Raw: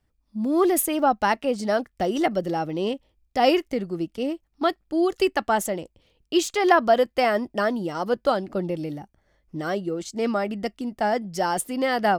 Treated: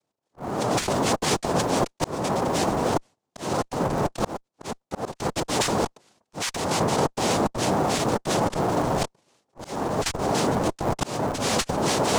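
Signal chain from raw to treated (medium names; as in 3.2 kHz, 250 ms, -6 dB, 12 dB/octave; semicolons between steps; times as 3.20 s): waveshaping leveller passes 3; transient shaper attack -7 dB, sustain +10 dB; noise-vocoded speech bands 2; in parallel at -11 dB: Schmitt trigger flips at -16 dBFS; on the sum: slow attack 582 ms; reverse; compression 4:1, threshold -22 dBFS, peak gain reduction 13.5 dB; reverse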